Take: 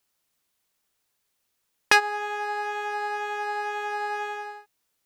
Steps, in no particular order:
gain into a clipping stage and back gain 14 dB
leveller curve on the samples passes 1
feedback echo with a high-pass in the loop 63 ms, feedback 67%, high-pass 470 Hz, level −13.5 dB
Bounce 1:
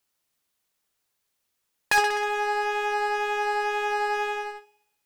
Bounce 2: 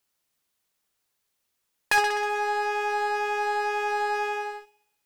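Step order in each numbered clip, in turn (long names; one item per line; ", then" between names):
feedback echo with a high-pass in the loop, then leveller curve on the samples, then gain into a clipping stage and back
feedback echo with a high-pass in the loop, then gain into a clipping stage and back, then leveller curve on the samples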